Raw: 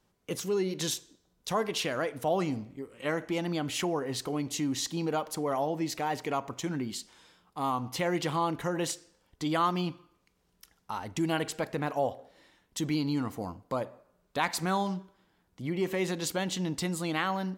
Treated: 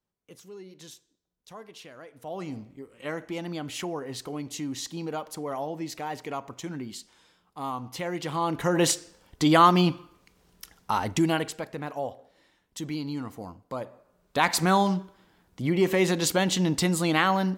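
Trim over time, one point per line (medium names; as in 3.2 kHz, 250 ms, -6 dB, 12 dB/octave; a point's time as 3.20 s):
2.05 s -15 dB
2.57 s -2.5 dB
8.21 s -2.5 dB
8.86 s +10 dB
11.06 s +10 dB
11.65 s -3 dB
13.69 s -3 dB
14.53 s +7.5 dB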